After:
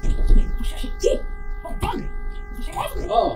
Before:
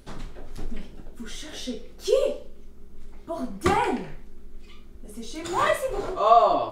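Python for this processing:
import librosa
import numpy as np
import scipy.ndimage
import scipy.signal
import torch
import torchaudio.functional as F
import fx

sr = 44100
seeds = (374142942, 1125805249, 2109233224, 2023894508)

y = fx.peak_eq(x, sr, hz=1600.0, db=-10.0, octaves=1.6)
y = fx.rider(y, sr, range_db=4, speed_s=2.0)
y = fx.phaser_stages(y, sr, stages=6, low_hz=370.0, high_hz=2100.0, hz=0.5, feedback_pct=45)
y = fx.dmg_buzz(y, sr, base_hz=400.0, harmonics=5, level_db=-52.0, tilt_db=-1, odd_only=False)
y = fx.stretch_grains(y, sr, factor=0.5, grain_ms=36.0)
y = y * 10.0 ** (9.0 / 20.0)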